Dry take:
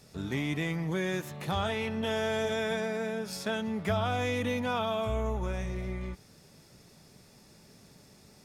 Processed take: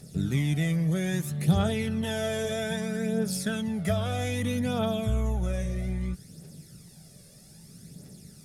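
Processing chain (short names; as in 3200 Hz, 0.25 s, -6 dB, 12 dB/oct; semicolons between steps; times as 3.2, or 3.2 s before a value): fifteen-band EQ 160 Hz +9 dB, 1000 Hz -11 dB, 2500 Hz -4 dB, 10000 Hz +11 dB; phaser 0.62 Hz, delay 1.9 ms, feedback 50%; gain +1 dB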